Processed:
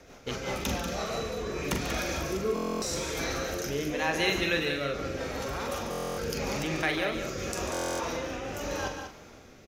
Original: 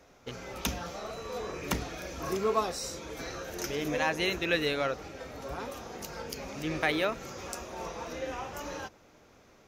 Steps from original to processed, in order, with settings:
parametric band 520 Hz −2 dB 1.6 octaves
mains-hum notches 60/120/180/240/300 Hz
in parallel at 0 dB: compressor whose output falls as the input rises −42 dBFS
on the sum: rotating-speaker cabinet horn 5.5 Hz, later 0.85 Hz, at 0:00.38
double-tracking delay 43 ms −7.5 dB
on a send: loudspeakers that aren't time-aligned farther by 49 metres −11 dB, 65 metres −8 dB
on the sum: buffer that repeats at 0:02.54/0:05.90/0:07.72, samples 1,024, times 11
level +1.5 dB

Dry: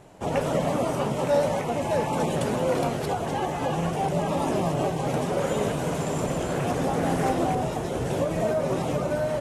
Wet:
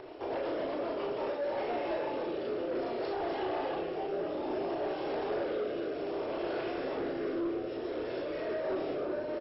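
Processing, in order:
double-tracking delay 35 ms −6 dB
brickwall limiter −18.5 dBFS, peak gain reduction 8.5 dB
low shelf with overshoot 250 Hz −11 dB, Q 3
far-end echo of a speakerphone 100 ms, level −20 dB
rotating-speaker cabinet horn 8 Hz, later 0.6 Hz, at 0:00.68
upward compression, threshold −33 dBFS
four-comb reverb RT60 0.42 s, combs from 26 ms, DRR 1.5 dB
soft clipping −21.5 dBFS, distortion −15 dB
0:06.63–0:08.65: parametric band 800 Hz −8 dB 0.41 octaves
level −6.5 dB
MP2 32 kbit/s 22,050 Hz

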